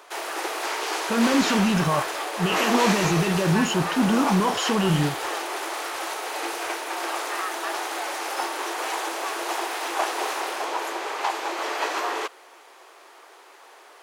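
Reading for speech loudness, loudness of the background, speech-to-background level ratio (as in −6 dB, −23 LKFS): −23.5 LKFS, −27.5 LKFS, 4.0 dB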